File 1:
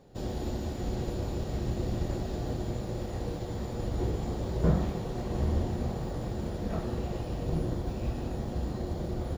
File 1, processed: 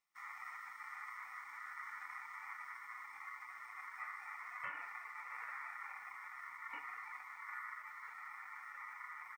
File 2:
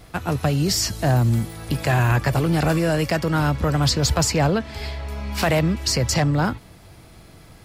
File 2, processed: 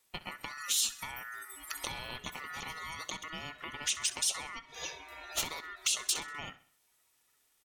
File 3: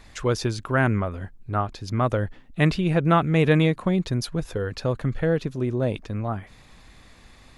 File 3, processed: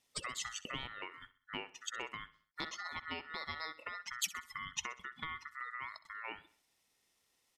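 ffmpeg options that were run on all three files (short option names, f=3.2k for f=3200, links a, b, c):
-af "highpass=230,afftdn=nr=22:nf=-35,acompressor=threshold=-30dB:ratio=12,crystalizer=i=6.5:c=0,asoftclip=type=hard:threshold=-11dB,aeval=exprs='val(0)*sin(2*PI*1600*n/s)':c=same,aecho=1:1:64|128|192|256:0.133|0.06|0.027|0.0122,volume=-8dB"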